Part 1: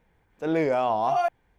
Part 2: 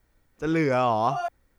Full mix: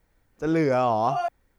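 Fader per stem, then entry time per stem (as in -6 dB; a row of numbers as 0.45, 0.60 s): -8.5, -1.5 dB; 0.00, 0.00 s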